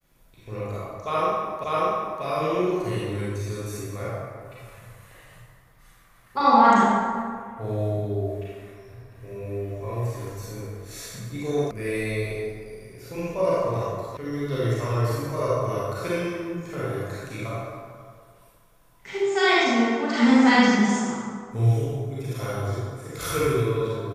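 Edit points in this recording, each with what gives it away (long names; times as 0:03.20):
0:01.64: the same again, the last 0.59 s
0:11.71: cut off before it has died away
0:14.17: cut off before it has died away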